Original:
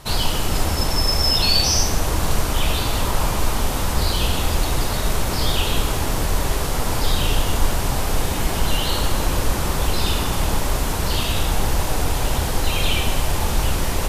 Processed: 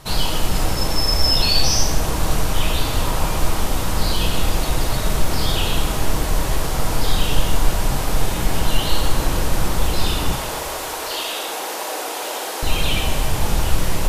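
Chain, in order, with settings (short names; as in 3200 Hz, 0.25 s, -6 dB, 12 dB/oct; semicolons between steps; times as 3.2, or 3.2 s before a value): 10.35–12.63 HPF 370 Hz 24 dB/oct; shoebox room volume 360 m³, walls mixed, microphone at 0.58 m; gain -1 dB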